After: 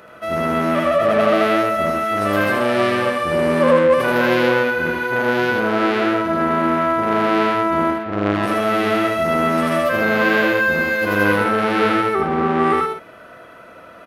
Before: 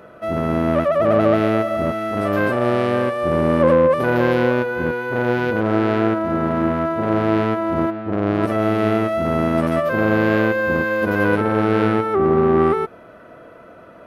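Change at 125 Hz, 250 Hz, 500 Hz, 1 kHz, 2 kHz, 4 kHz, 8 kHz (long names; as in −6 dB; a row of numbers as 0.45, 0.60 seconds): −5.0 dB, −1.5 dB, 0.0 dB, +3.5 dB, +5.0 dB, +8.0 dB, can't be measured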